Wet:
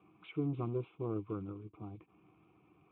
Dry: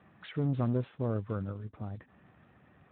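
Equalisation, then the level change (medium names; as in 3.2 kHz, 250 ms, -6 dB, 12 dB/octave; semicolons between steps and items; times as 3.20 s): vowel filter u; treble shelf 2.5 kHz -6.5 dB; static phaser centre 1.3 kHz, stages 8; +17.5 dB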